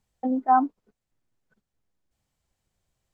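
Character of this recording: noise floor -84 dBFS; spectral tilt -6.0 dB/oct

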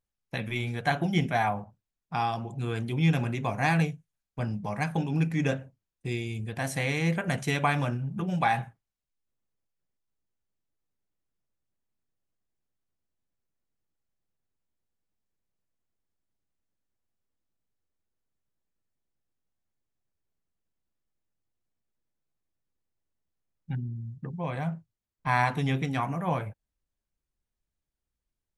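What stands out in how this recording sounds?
noise floor -88 dBFS; spectral tilt -5.5 dB/oct

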